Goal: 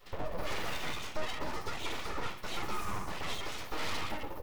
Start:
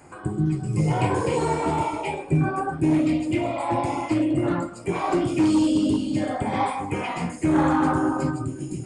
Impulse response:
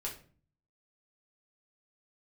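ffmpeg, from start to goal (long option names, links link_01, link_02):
-filter_complex "[0:a]highpass=frequency=74:width=0.5412,highpass=frequency=74:width=1.3066,lowshelf=frequency=170:gain=-7.5,asplit=2[link_01][link_02];[link_02]adelay=14,volume=-9dB[link_03];[link_01][link_03]amix=inputs=2:normalize=0,aecho=1:1:121:0.299,flanger=delay=19:depth=5.2:speed=0.85,asetrate=88200,aresample=44100,bass=frequency=250:gain=14,treble=frequency=4000:gain=-3,asplit=2[link_04][link_05];[1:a]atrim=start_sample=2205,adelay=88[link_06];[link_05][link_06]afir=irnorm=-1:irlink=0,volume=-14.5dB[link_07];[link_04][link_07]amix=inputs=2:normalize=0,aeval=exprs='abs(val(0))':channel_layout=same,bandreject=frequency=1600:width=16,asoftclip=type=tanh:threshold=-18dB,volume=-6dB"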